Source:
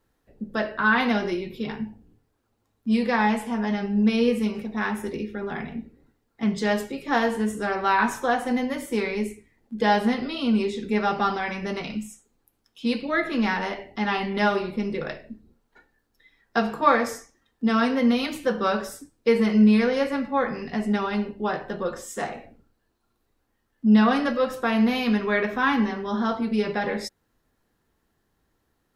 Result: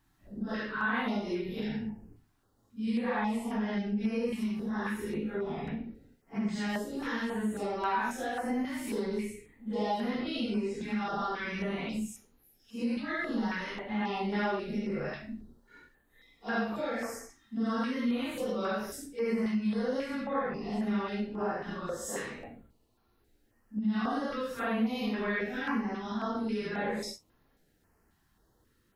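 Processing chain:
random phases in long frames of 200 ms
downward compressor 2.5 to 1, threshold −36 dBFS, peak gain reduction 15.5 dB
notch on a step sequencer 3.7 Hz 490–7,900 Hz
level +2.5 dB

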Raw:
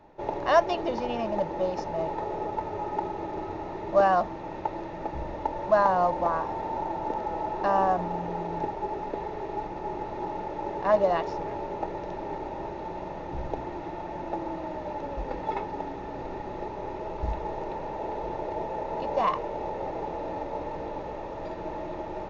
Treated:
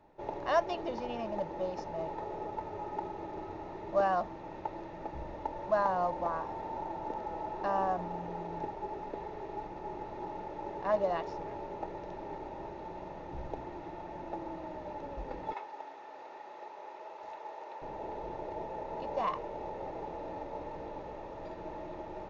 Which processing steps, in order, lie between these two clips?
0:15.53–0:17.82: high-pass filter 660 Hz 12 dB per octave
level −7.5 dB

